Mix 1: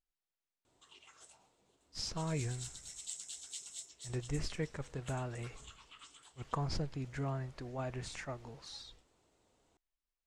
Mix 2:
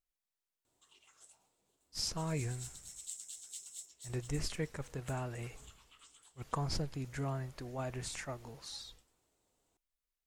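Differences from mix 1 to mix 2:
background -7.5 dB; master: remove air absorption 69 m

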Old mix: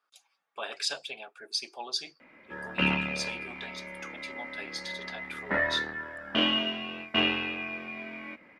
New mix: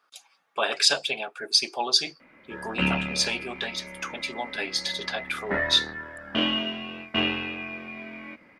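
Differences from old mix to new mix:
speech +11.0 dB; master: add low shelf 180 Hz +6.5 dB

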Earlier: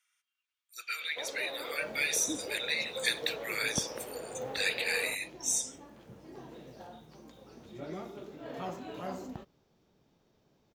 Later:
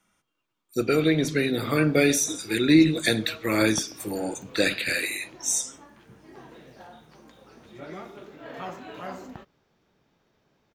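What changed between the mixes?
speech: remove ladder high-pass 1400 Hz, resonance 20%; first sound: muted; second sound: add bell 1700 Hz +8 dB 1.7 oct

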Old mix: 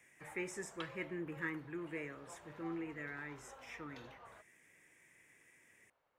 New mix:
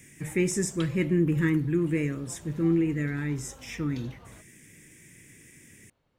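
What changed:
speech +5.5 dB; master: remove three-band isolator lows -20 dB, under 510 Hz, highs -13 dB, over 2300 Hz

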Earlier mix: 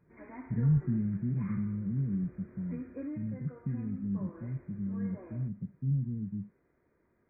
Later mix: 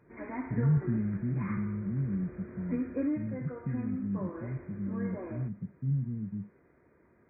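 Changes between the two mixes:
background +8.5 dB; master: add HPF 51 Hz

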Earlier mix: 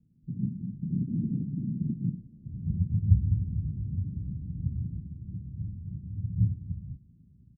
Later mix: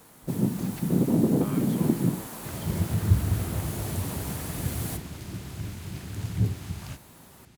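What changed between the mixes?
speech +8.0 dB; first sound: send on; master: remove inverse Chebyshev low-pass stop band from 1200 Hz, stop band 80 dB

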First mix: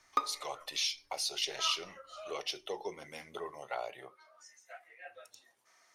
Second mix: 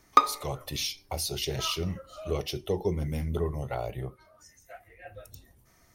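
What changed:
speech: remove BPF 780–7300 Hz; background +12.0 dB

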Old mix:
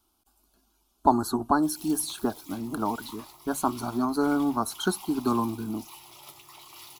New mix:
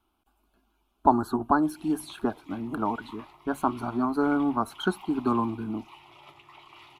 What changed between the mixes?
background: add air absorption 66 m; master: add resonant high shelf 3700 Hz -12 dB, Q 1.5

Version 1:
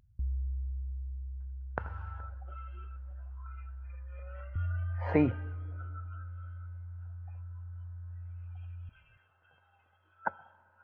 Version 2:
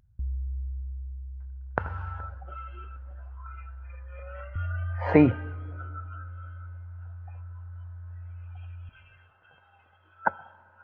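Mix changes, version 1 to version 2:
speech +8.0 dB; background: send on

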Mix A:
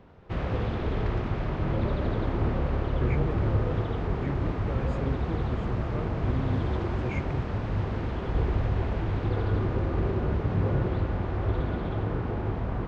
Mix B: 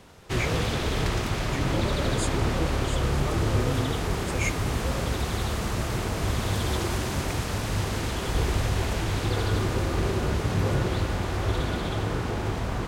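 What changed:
speech: entry -2.70 s; master: remove tape spacing loss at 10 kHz 42 dB

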